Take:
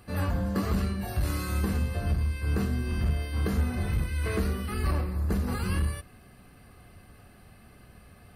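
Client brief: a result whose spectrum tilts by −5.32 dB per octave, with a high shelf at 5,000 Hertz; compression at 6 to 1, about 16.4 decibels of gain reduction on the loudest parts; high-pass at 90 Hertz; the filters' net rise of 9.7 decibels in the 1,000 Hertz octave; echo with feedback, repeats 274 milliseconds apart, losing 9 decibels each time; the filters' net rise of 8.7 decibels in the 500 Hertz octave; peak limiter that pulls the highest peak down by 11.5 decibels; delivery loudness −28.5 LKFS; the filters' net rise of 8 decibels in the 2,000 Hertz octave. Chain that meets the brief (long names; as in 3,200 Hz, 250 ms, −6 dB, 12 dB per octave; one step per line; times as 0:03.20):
high-pass filter 90 Hz
parametric band 500 Hz +8.5 dB
parametric band 1,000 Hz +8 dB
parametric band 2,000 Hz +7.5 dB
high-shelf EQ 5,000 Hz −4 dB
downward compressor 6 to 1, threshold −39 dBFS
brickwall limiter −36 dBFS
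repeating echo 274 ms, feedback 35%, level −9 dB
level +16.5 dB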